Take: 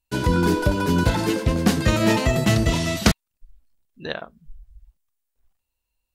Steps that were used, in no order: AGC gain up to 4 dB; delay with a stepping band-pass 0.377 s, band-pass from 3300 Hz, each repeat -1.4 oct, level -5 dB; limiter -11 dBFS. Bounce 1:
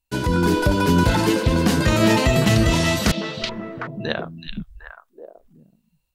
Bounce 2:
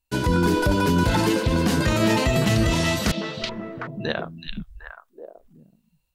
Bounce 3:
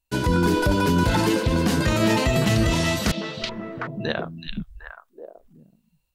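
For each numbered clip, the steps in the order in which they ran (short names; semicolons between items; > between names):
delay with a stepping band-pass > limiter > AGC; AGC > delay with a stepping band-pass > limiter; delay with a stepping band-pass > AGC > limiter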